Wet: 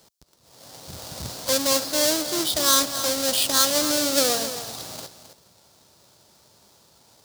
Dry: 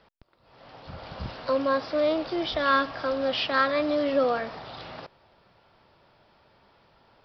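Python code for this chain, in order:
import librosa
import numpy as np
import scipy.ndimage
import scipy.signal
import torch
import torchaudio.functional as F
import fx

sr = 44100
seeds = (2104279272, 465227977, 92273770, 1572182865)

p1 = fx.halfwave_hold(x, sr)
p2 = scipy.signal.sosfilt(scipy.signal.butter(2, 69.0, 'highpass', fs=sr, output='sos'), p1)
p3 = fx.high_shelf_res(p2, sr, hz=3300.0, db=11.0, q=1.5)
p4 = p3 + fx.echo_single(p3, sr, ms=266, db=-11.5, dry=0)
y = p4 * 10.0 ** (-4.0 / 20.0)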